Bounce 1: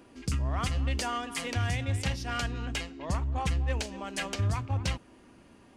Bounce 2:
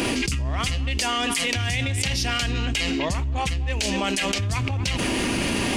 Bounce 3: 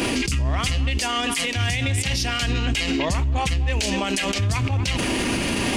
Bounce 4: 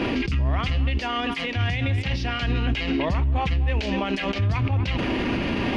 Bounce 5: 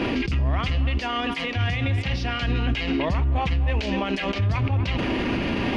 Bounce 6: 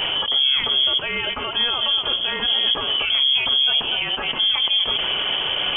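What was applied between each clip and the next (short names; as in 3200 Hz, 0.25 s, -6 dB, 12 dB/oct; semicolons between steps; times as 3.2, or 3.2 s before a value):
resonant high shelf 1800 Hz +6.5 dB, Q 1.5; fast leveller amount 100%
limiter -18 dBFS, peak gain reduction 10.5 dB; gain +4 dB
air absorption 290 m
band-limited delay 0.31 s, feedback 69%, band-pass 650 Hz, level -15.5 dB
inverted band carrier 3300 Hz; gain +1.5 dB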